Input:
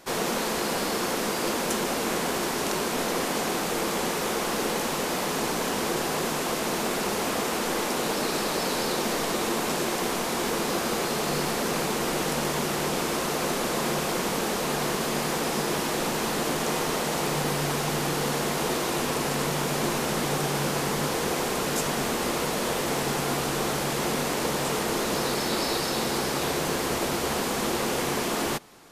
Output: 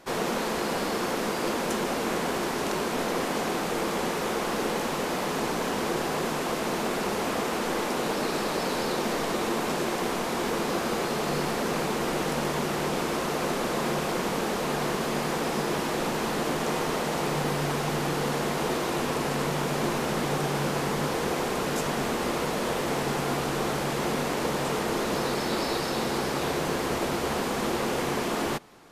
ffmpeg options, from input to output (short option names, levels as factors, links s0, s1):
-af "highshelf=f=4000:g=-7.5"